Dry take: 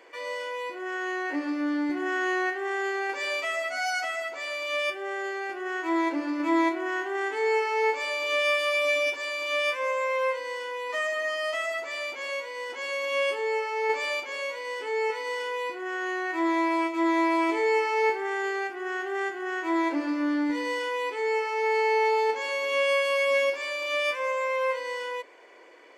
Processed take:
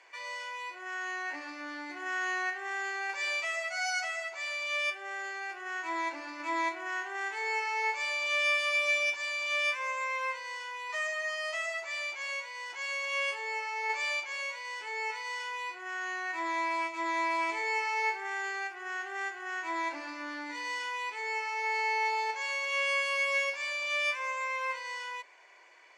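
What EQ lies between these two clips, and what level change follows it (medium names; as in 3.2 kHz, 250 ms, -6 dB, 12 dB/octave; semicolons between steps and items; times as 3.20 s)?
cabinet simulation 440–9300 Hz, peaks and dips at 490 Hz -9 dB, 1.3 kHz -5 dB, 1.9 kHz -3 dB, 3.2 kHz -7 dB, 4.8 kHz -3 dB, 8.4 kHz -6 dB; tilt shelf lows -8 dB, about 660 Hz; -5.5 dB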